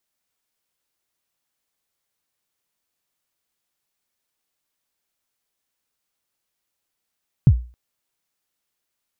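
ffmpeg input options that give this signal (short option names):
-f lavfi -i "aevalsrc='0.596*pow(10,-3*t/0.35)*sin(2*PI*(160*0.062/log(60/160)*(exp(log(60/160)*min(t,0.062)/0.062)-1)+60*max(t-0.062,0)))':d=0.27:s=44100"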